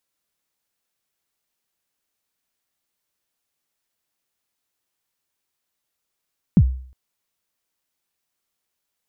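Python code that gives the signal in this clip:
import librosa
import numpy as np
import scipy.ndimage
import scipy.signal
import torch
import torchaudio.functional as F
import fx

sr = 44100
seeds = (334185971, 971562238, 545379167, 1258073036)

y = fx.drum_kick(sr, seeds[0], length_s=0.36, level_db=-6, start_hz=230.0, end_hz=64.0, sweep_ms=59.0, decay_s=0.52, click=False)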